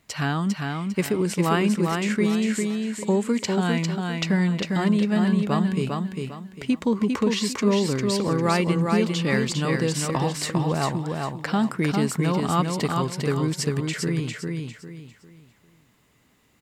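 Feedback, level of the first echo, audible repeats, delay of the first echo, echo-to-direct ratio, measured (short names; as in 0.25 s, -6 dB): 31%, -4.0 dB, 4, 0.401 s, -3.5 dB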